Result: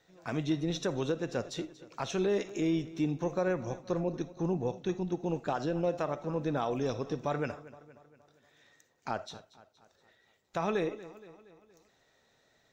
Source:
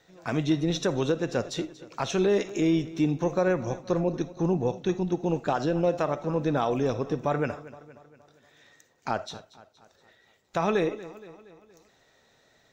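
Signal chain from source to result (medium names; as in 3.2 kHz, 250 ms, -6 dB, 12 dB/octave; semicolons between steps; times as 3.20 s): 6.81–7.52 s: peaking EQ 4.6 kHz +6.5 dB 1.1 oct; trim -6 dB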